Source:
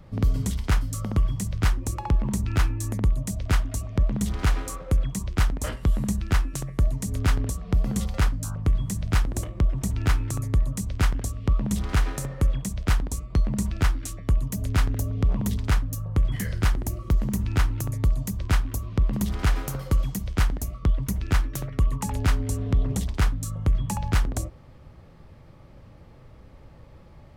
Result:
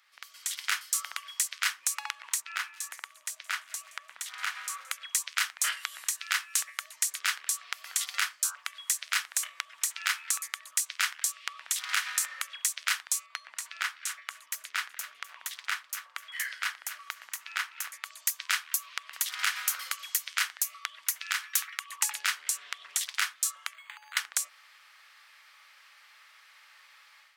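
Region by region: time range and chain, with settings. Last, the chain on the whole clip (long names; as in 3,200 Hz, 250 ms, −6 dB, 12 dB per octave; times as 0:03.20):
0:02.40–0:04.91: high-shelf EQ 2,200 Hz −9.5 dB + delay with a high-pass on its return 171 ms, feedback 57%, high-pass 2,700 Hz, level −20.5 dB
0:13.26–0:18.06: high-shelf EQ 3,200 Hz −9 dB + repeating echo 254 ms, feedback 32%, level −14 dB
0:21.23–0:21.90: downward compressor 5 to 1, threshold −24 dBFS + linear-phase brick-wall high-pass 760 Hz
0:23.74–0:24.17: high-pass filter 340 Hz 24 dB per octave + downward compressor 4 to 1, threshold −45 dBFS + linearly interpolated sample-rate reduction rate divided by 8×
whole clip: downward compressor 2 to 1, threshold −26 dBFS; high-pass filter 1,500 Hz 24 dB per octave; automatic gain control gain up to 10.5 dB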